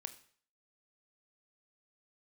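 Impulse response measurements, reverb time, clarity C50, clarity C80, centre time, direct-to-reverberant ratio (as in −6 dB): 0.50 s, 14.5 dB, 17.5 dB, 6 ms, 9.0 dB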